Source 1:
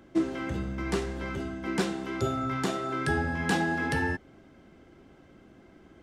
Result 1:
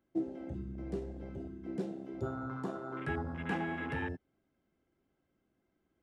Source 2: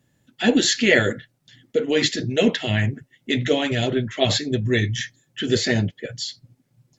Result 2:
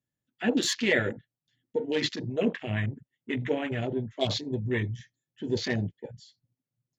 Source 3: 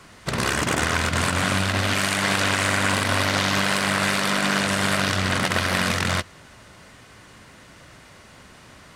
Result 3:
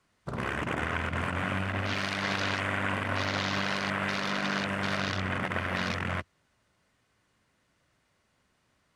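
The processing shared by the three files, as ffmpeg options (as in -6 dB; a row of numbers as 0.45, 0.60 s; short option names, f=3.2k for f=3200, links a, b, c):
-af "afwtdn=0.0398,volume=-8dB"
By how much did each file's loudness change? -9.0, -8.0, -9.0 LU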